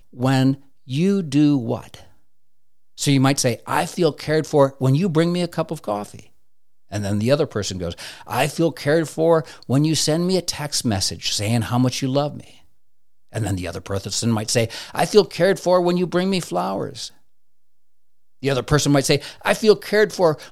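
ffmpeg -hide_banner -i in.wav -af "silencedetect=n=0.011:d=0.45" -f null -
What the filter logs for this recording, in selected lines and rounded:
silence_start: 2.07
silence_end: 2.98 | silence_duration: 0.91
silence_start: 6.26
silence_end: 6.91 | silence_duration: 0.65
silence_start: 12.60
silence_end: 13.33 | silence_duration: 0.73
silence_start: 17.10
silence_end: 18.42 | silence_duration: 1.32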